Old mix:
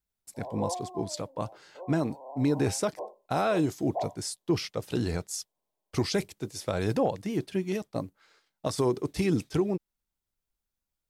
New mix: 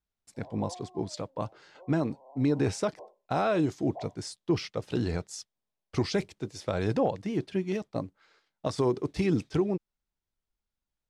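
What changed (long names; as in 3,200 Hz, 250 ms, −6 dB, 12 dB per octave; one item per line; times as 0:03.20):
background −9.5 dB
master: add high-frequency loss of the air 75 metres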